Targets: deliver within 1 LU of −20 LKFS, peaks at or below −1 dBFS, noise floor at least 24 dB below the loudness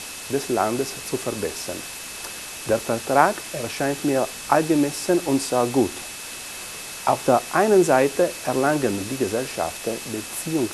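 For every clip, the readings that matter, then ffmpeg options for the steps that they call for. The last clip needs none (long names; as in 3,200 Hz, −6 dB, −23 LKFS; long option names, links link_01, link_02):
interfering tone 2,600 Hz; level of the tone −42 dBFS; background noise floor −35 dBFS; target noise floor −47 dBFS; integrated loudness −23.0 LKFS; sample peak −1.0 dBFS; target loudness −20.0 LKFS
→ -af "bandreject=frequency=2600:width=30"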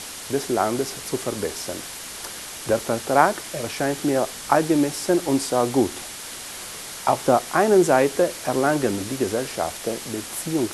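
interfering tone none found; background noise floor −36 dBFS; target noise floor −47 dBFS
→ -af "afftdn=noise_reduction=11:noise_floor=-36"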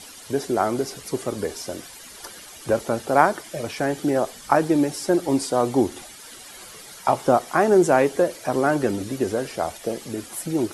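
background noise floor −43 dBFS; target noise floor −47 dBFS
→ -af "afftdn=noise_reduction=6:noise_floor=-43"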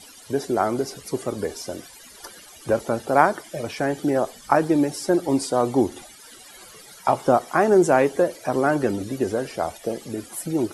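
background noise floor −46 dBFS; target noise floor −47 dBFS
→ -af "afftdn=noise_reduction=6:noise_floor=-46"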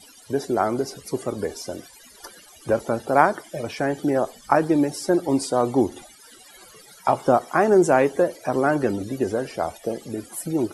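background noise floor −49 dBFS; integrated loudness −23.0 LKFS; sample peak −1.5 dBFS; target loudness −20.0 LKFS
→ -af "volume=3dB,alimiter=limit=-1dB:level=0:latency=1"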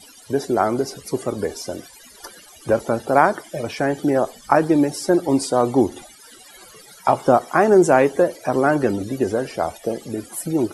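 integrated loudness −20.0 LKFS; sample peak −1.0 dBFS; background noise floor −46 dBFS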